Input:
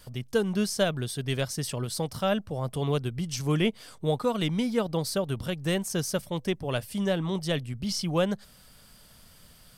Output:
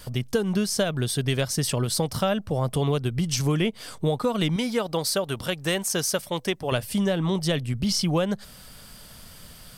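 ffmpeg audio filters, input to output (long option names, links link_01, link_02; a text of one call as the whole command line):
ffmpeg -i in.wav -filter_complex "[0:a]asettb=1/sr,asplit=3[link_01][link_02][link_03];[link_01]atrim=end=4.564[link_04];[link_02]atrim=start=4.56:end=6.72,asetpts=PTS-STARTPTS,afade=type=in:duration=0.004:curve=qsin,afade=type=out:start_time=2.156:duration=0.004:curve=qsin,lowshelf=frequency=310:gain=-11.5[link_05];[link_03]atrim=start=6.716[link_06];[link_04][link_05]acrossfade=duration=0.004:curve1=hsin:curve2=qsin[link_07];[link_07][link_06]acrossfade=duration=0.004:curve1=qsin:curve2=hsin,acompressor=threshold=-29dB:ratio=6,volume=8.5dB" out.wav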